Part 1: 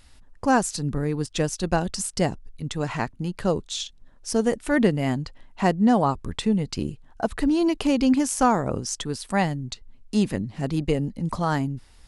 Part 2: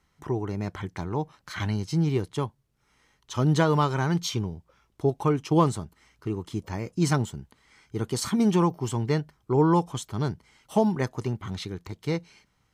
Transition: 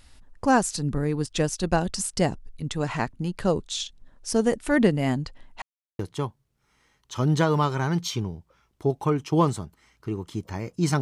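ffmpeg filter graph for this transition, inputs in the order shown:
-filter_complex "[0:a]apad=whole_dur=11.01,atrim=end=11.01,asplit=2[a][b];[a]atrim=end=5.62,asetpts=PTS-STARTPTS,afade=t=out:st=5.616:d=0.004:c=hsin[c];[b]atrim=start=5.62:end=5.99,asetpts=PTS-STARTPTS,volume=0[d];[1:a]atrim=start=2.18:end=7.2,asetpts=PTS-STARTPTS,afade=t=in:d=0.004:c=hsin[e];[c][d][e]concat=n=3:v=0:a=1"

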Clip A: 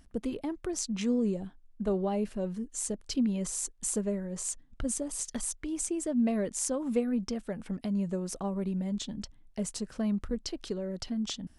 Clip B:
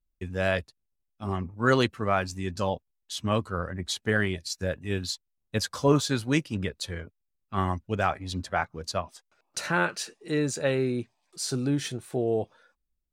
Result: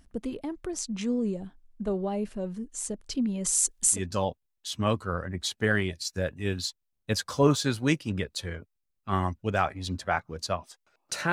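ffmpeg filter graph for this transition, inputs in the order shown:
-filter_complex "[0:a]asettb=1/sr,asplit=3[a][b][c];[a]atrim=end=3.444[d];[b]atrim=start=3.44:end=4.01,asetpts=PTS-STARTPTS,afade=t=in:d=0.004:c=qsin,afade=t=out:st=0.566:d=0.004:c=qsin,highshelf=f=2.6k:g=11[e];[c]atrim=start=4.006[f];[d][e]acrossfade=d=0.004:c1=hsin:c2=qsin[g];[g][f]acrossfade=d=0.004:c1=qsin:c2=hsin,apad=whole_dur=11.32,atrim=end=11.32,atrim=end=4.01,asetpts=PTS-STARTPTS[h];[1:a]atrim=start=2.36:end=9.77,asetpts=PTS-STARTPTS[i];[h][i]acrossfade=d=0.1:c1=tri:c2=tri"

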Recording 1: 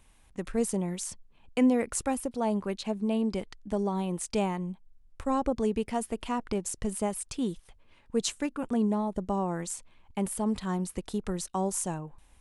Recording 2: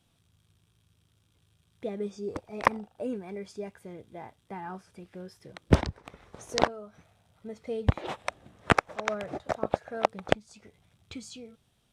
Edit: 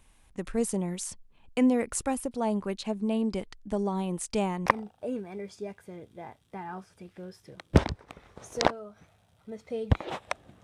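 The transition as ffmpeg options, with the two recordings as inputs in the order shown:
-filter_complex "[0:a]apad=whole_dur=10.63,atrim=end=10.63,atrim=end=4.662[a];[1:a]atrim=start=2.628:end=8.6[b];[a][b]acrossfade=d=0.004:c1=hsin:c2=hsin"

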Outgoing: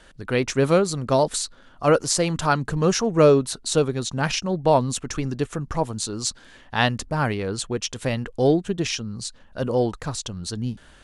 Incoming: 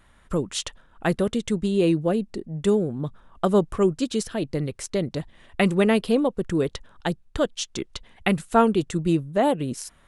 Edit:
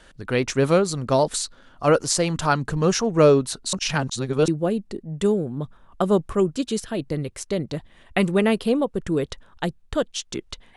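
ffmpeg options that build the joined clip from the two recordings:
-filter_complex "[0:a]apad=whole_dur=10.76,atrim=end=10.76,asplit=2[a][b];[a]atrim=end=3.732[c];[b]atrim=start=3.728:end=4.482,asetpts=PTS-STARTPTS,areverse[d];[1:a]atrim=start=1.908:end=8.19[e];[c][d]acrossfade=d=0.004:c1=hsin:c2=hsin[f];[f][e]acrossfade=d=0.004:c1=hsin:c2=hsin"

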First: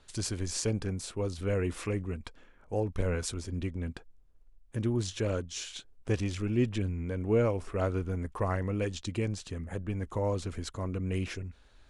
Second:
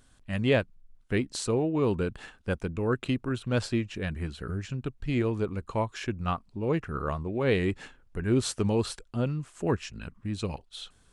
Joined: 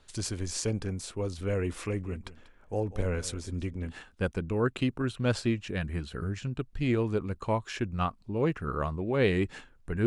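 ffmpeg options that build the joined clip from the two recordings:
-filter_complex "[0:a]asplit=3[a][b][c];[a]afade=t=out:st=2.03:d=0.02[d];[b]aecho=1:1:190:0.15,afade=t=in:st=2.03:d=0.02,afade=t=out:st=3.99:d=0.02[e];[c]afade=t=in:st=3.99:d=0.02[f];[d][e][f]amix=inputs=3:normalize=0,apad=whole_dur=10.06,atrim=end=10.06,atrim=end=3.99,asetpts=PTS-STARTPTS[g];[1:a]atrim=start=2.12:end=8.33,asetpts=PTS-STARTPTS[h];[g][h]acrossfade=d=0.14:c1=tri:c2=tri"

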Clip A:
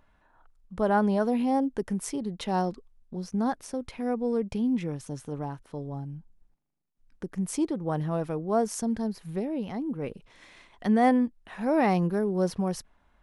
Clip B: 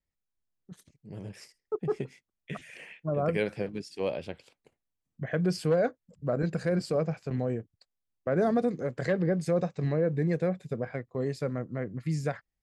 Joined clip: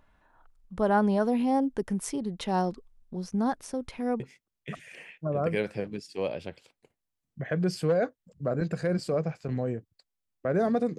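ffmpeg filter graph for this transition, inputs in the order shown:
-filter_complex "[0:a]apad=whole_dur=10.98,atrim=end=10.98,atrim=end=4.202[a];[1:a]atrim=start=2.018:end=8.8[b];[a][b]acrossfade=d=0.004:c1=hsin:c2=hsin"

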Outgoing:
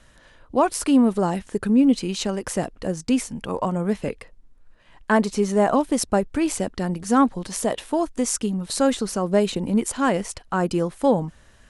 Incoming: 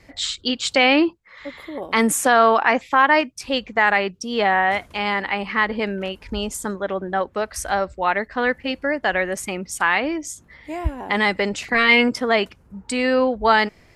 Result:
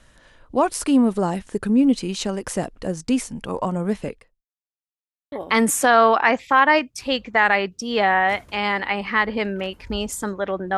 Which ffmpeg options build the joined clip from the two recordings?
-filter_complex "[0:a]apad=whole_dur=10.77,atrim=end=10.77,asplit=2[a][b];[a]atrim=end=4.46,asetpts=PTS-STARTPTS,afade=t=out:st=4.02:d=0.44:c=qua[c];[b]atrim=start=4.46:end=5.32,asetpts=PTS-STARTPTS,volume=0[d];[1:a]atrim=start=1.74:end=7.19,asetpts=PTS-STARTPTS,afade=t=in:d=0.004:c=hsin[e];[c][d][e]concat=n=3:v=0:a=1"

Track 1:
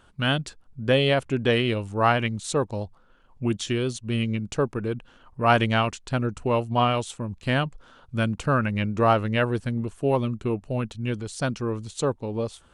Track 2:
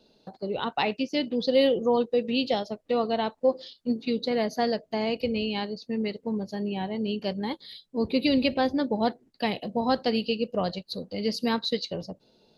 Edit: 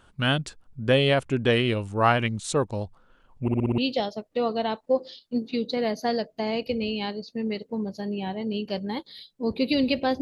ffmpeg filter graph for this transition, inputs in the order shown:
-filter_complex "[0:a]apad=whole_dur=10.21,atrim=end=10.21,asplit=6[a][b][c][d][e][f];[a]atrim=end=3.482[g];[b]atrim=start=3.418:end=3.482[h];[c]atrim=start=3.418:end=3.482[i];[d]atrim=start=3.418:end=3.482[j];[e]atrim=start=3.418:end=3.482[k];[f]atrim=start=3.418:end=3.482[l];[1:a]atrim=start=2.318:end=8.75[m];[g][h]acrossfade=d=0.004:c1=hsin:c2=hsin[n];[n][i]acrossfade=d=0.004:c1=hsin:c2=hsin[o];[o][j]acrossfade=d=0.004:c1=hsin:c2=hsin[p];[p][k]acrossfade=d=0.004:c1=hsin:c2=hsin[q];[q][l]acrossfade=d=0.004:c1=hsin:c2=hsin[r];[r][m]acrossfade=d=0.004:c1=hsin:c2=hsin"

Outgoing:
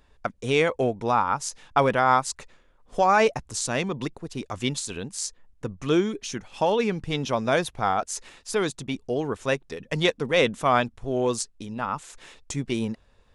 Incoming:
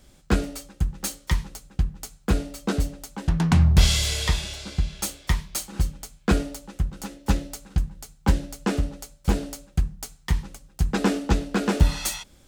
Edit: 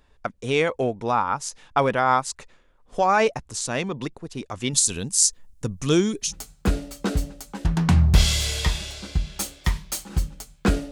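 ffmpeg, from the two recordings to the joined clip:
-filter_complex "[0:a]asettb=1/sr,asplit=3[a][b][c];[a]atrim=end=4.734[d];[b]atrim=start=4.73:end=6.33,asetpts=PTS-STARTPTS,afade=t=in:d=0.004:c=qsin,afade=t=out:st=1.596:d=0.004:c=qsin,bass=f=250:g=7,treble=f=4k:g=15[e];[c]atrim=start=6.326[f];[d][e]acrossfade=d=0.004:c1=hsin:c2=qsin[g];[g][f]acrossfade=d=0.004:c1=qsin:c2=hsin,apad=whole_dur=10.91,atrim=end=10.91,atrim=end=6.33,asetpts=PTS-STARTPTS[h];[1:a]atrim=start=1.88:end=6.54,asetpts=PTS-STARTPTS[i];[h][i]acrossfade=d=0.08:c1=tri:c2=tri"

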